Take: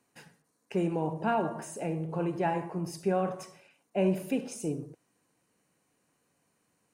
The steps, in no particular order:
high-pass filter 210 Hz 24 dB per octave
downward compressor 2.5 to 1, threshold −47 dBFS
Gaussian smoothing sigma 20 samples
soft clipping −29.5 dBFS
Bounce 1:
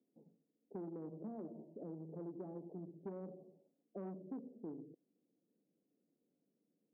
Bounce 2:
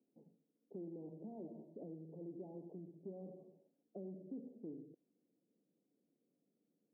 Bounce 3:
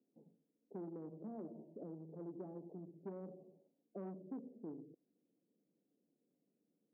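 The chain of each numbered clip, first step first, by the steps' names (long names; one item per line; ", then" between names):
Gaussian smoothing, then soft clipping, then high-pass filter, then downward compressor
soft clipping, then Gaussian smoothing, then downward compressor, then high-pass filter
Gaussian smoothing, then soft clipping, then downward compressor, then high-pass filter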